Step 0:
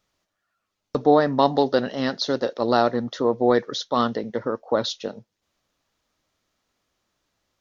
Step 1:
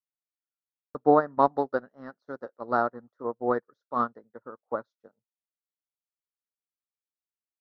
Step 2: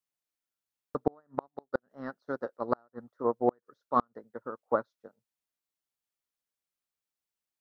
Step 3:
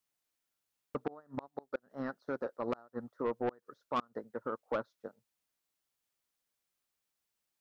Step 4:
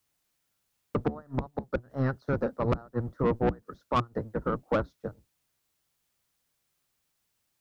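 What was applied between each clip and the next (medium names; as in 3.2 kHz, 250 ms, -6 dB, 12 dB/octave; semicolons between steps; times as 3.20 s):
resonant high shelf 2 kHz -12.5 dB, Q 3; upward expansion 2.5:1, over -36 dBFS; trim -3 dB
inverted gate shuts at -15 dBFS, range -41 dB; trim +3.5 dB
saturation -22.5 dBFS, distortion -9 dB; peak limiter -31.5 dBFS, peak gain reduction 9 dB; trim +5 dB
octave divider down 1 oct, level +4 dB; in parallel at -7.5 dB: saturation -31.5 dBFS, distortion -11 dB; on the sum: trim +5 dB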